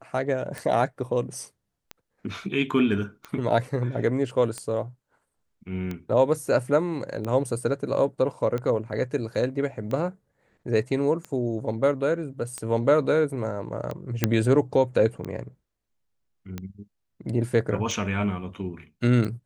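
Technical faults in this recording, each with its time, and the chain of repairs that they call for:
tick 45 rpm -19 dBFS
14.24 pop -5 dBFS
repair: de-click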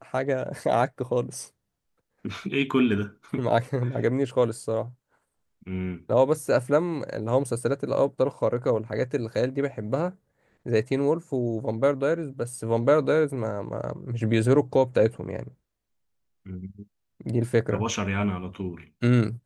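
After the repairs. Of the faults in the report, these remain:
none

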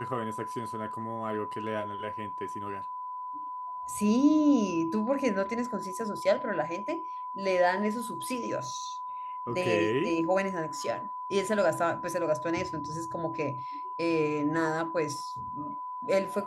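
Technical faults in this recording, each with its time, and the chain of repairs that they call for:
tone 1000 Hz -35 dBFS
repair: notch 1000 Hz, Q 30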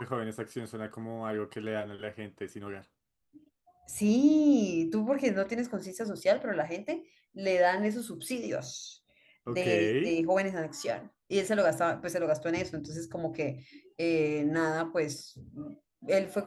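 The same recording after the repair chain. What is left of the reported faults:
none

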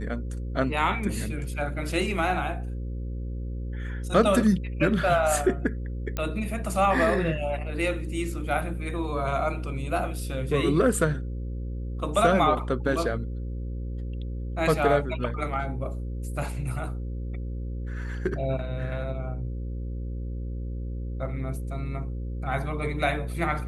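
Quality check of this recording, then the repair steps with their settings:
buzz 60 Hz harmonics 9 -32 dBFS
6.17 pop -15 dBFS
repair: de-click; de-hum 60 Hz, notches 9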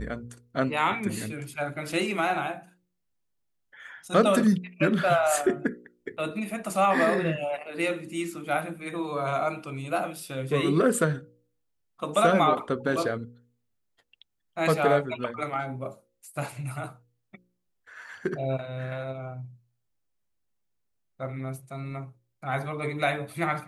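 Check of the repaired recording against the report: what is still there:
none

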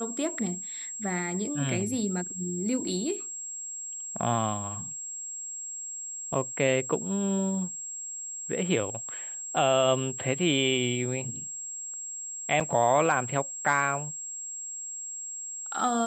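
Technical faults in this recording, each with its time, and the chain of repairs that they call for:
tone 7600 Hz -35 dBFS
12.6–12.61 gap 5.9 ms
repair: notch 7600 Hz, Q 30; interpolate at 12.6, 5.9 ms

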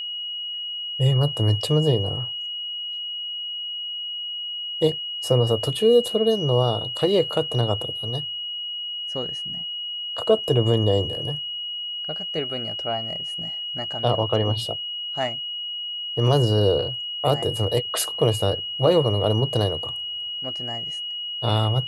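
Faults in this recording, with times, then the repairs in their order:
tone 2900 Hz -28 dBFS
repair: notch 2900 Hz, Q 30

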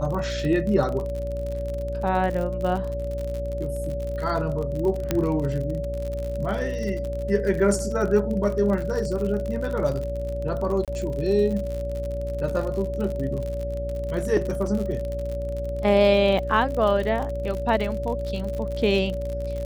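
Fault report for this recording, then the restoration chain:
buzz 60 Hz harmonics 11 -31 dBFS
crackle 53/s -29 dBFS
tone 570 Hz -29 dBFS
5.11 pop -8 dBFS
10.85–10.88 gap 27 ms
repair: de-click; de-hum 60 Hz, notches 11; notch 570 Hz, Q 30; interpolate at 10.85, 27 ms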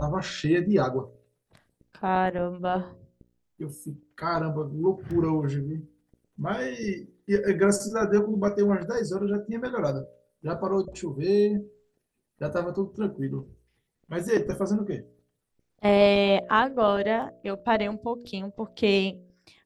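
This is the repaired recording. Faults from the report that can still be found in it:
5.11 pop

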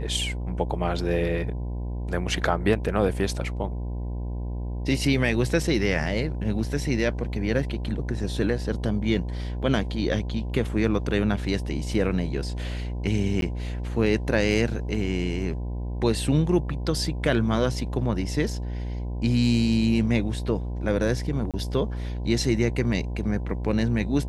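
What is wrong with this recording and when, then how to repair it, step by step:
buzz 60 Hz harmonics 17 -30 dBFS
13.41–13.42 gap 12 ms
21.51–21.54 gap 27 ms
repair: de-hum 60 Hz, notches 17; interpolate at 13.41, 12 ms; interpolate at 21.51, 27 ms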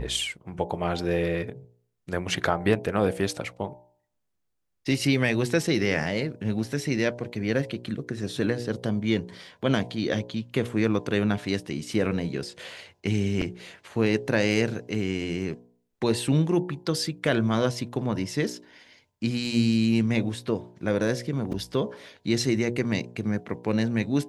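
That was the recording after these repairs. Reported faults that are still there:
none

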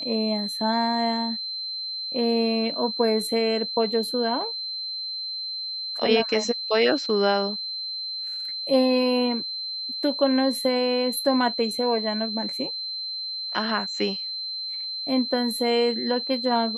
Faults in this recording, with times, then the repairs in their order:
tone 4100 Hz -29 dBFS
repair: notch 4100 Hz, Q 30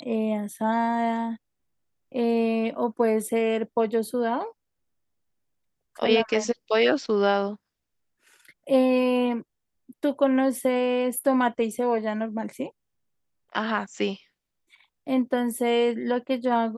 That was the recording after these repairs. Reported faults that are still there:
none

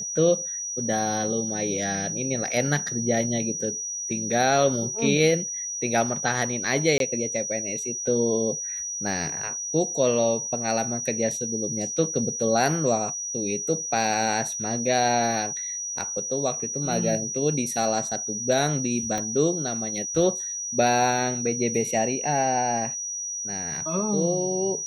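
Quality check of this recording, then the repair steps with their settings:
tone 5800 Hz -29 dBFS
6.98–7 gap 22 ms
19.18 pop -15 dBFS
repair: de-click; notch 5800 Hz, Q 30; interpolate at 6.98, 22 ms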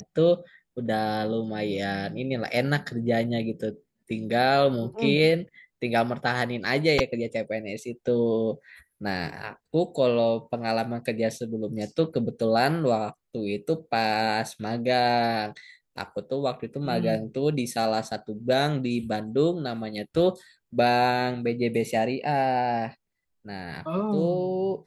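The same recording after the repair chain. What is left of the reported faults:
19.18 pop

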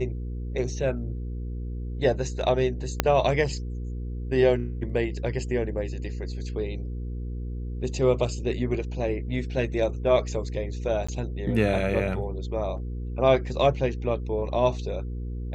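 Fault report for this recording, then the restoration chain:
hum 60 Hz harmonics 8 -32 dBFS
3 pop -5 dBFS
11.07–11.09 gap 15 ms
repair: de-click; de-hum 60 Hz, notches 8; interpolate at 11.07, 15 ms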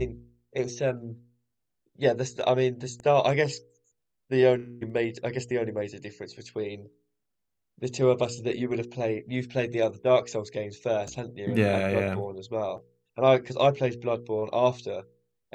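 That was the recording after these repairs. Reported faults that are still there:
3 pop

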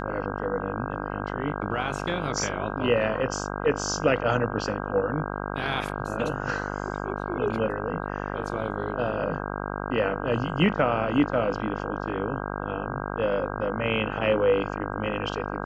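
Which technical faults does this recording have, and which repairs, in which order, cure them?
buzz 50 Hz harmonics 32 -32 dBFS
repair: de-hum 50 Hz, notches 32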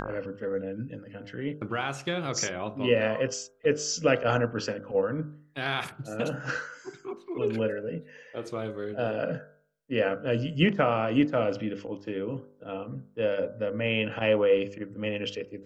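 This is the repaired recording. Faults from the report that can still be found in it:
none

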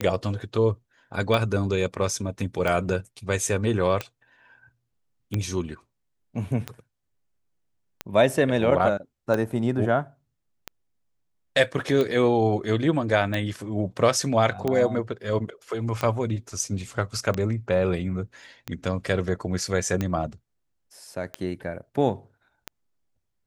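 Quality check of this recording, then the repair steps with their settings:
tick 45 rpm -13 dBFS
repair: de-click

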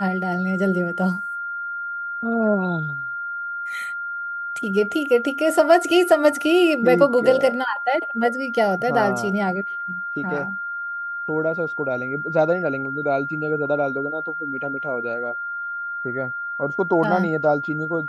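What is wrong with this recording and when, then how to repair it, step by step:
tone 1400 Hz -26 dBFS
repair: notch 1400 Hz, Q 30

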